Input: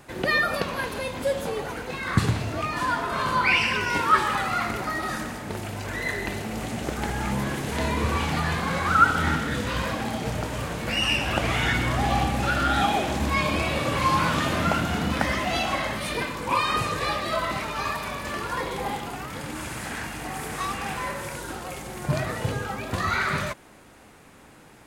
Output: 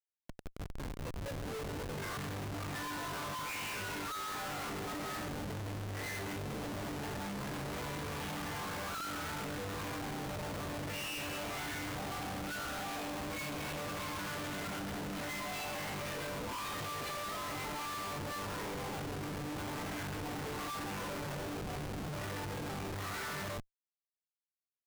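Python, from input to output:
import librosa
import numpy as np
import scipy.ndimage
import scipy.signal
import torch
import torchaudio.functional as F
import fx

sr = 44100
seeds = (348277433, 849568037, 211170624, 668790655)

y = fx.fade_in_head(x, sr, length_s=2.47)
y = fx.resonator_bank(y, sr, root=43, chord='fifth', decay_s=0.48)
y = fx.schmitt(y, sr, flips_db=-46.5)
y = y * 10.0 ** (1.0 / 20.0)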